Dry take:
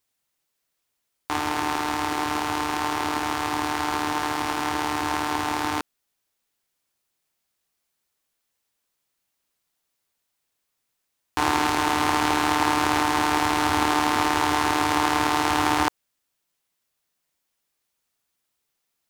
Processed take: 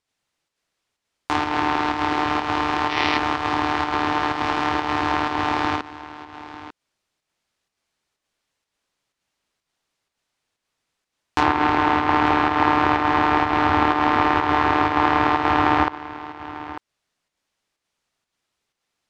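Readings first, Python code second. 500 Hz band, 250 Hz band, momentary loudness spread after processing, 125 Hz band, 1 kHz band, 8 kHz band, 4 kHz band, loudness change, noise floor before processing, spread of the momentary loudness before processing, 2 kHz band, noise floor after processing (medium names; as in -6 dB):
+4.5 dB, +3.5 dB, 16 LU, +4.5 dB, +4.0 dB, under -10 dB, -1.0 dB, +3.5 dB, -78 dBFS, 5 LU, +3.0 dB, -83 dBFS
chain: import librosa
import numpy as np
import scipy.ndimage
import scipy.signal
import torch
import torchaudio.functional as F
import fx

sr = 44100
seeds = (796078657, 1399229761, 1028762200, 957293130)

y = fx.env_lowpass_down(x, sr, base_hz=2500.0, full_db=-18.5)
y = y + 10.0 ** (-16.0 / 20.0) * np.pad(y, (int(895 * sr / 1000.0), 0))[:len(y)]
y = fx.volume_shaper(y, sr, bpm=125, per_beat=1, depth_db=-5, release_ms=88.0, shape='slow start')
y = fx.spec_box(y, sr, start_s=2.9, length_s=0.28, low_hz=1800.0, high_hz=6100.0, gain_db=8)
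y = fx.air_absorb(y, sr, metres=69.0)
y = F.gain(torch.from_numpy(y), 5.0).numpy()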